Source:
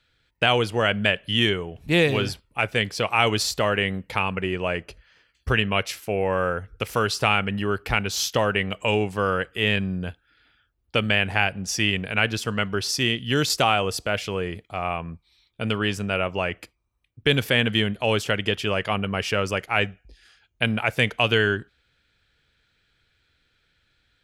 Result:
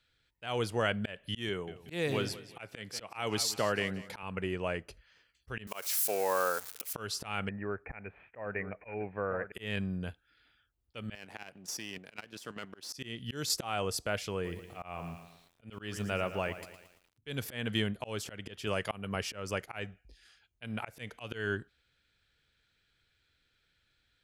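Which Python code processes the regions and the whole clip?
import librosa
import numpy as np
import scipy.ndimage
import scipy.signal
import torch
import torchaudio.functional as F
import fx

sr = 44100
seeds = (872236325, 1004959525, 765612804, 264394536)

y = fx.chain(x, sr, fx.highpass(hz=110.0, slope=12),
    fx.echo_feedback(ms=183, feedback_pct=36, wet_db=-17), at=(1.49, 4.23))
y = fx.chain(y, sr, fx.crossing_spikes(level_db=-22.0),
    fx.highpass(hz=340.0, slope=12),
    fx.dynamic_eq(hz=1000.0, q=1.1, threshold_db=-38.0, ratio=4.0, max_db=5), at=(5.67, 6.93))
y = fx.chain(y, sr, fx.cheby_ripple(hz=2500.0, ripple_db=6),
    fx.echo_single(ms=953, db=-12.0), at=(7.49, 9.52))
y = fx.chain(y, sr, fx.halfwave_gain(db=-7.0),
    fx.highpass(hz=200.0, slope=12),
    fx.level_steps(step_db=11), at=(11.15, 12.93))
y = fx.chain(y, sr, fx.auto_swell(attack_ms=114.0),
    fx.echo_crushed(ms=113, feedback_pct=55, bits=8, wet_db=-12), at=(14.33, 17.28))
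y = fx.chain(y, sr, fx.highpass(hz=57.0, slope=12),
    fx.peak_eq(hz=11000.0, db=7.0, octaves=1.7), at=(18.67, 19.16))
y = fx.high_shelf(y, sr, hz=3900.0, db=4.5)
y = fx.auto_swell(y, sr, attack_ms=220.0)
y = fx.dynamic_eq(y, sr, hz=2800.0, q=1.5, threshold_db=-41.0, ratio=4.0, max_db=-5)
y = y * librosa.db_to_amplitude(-8.0)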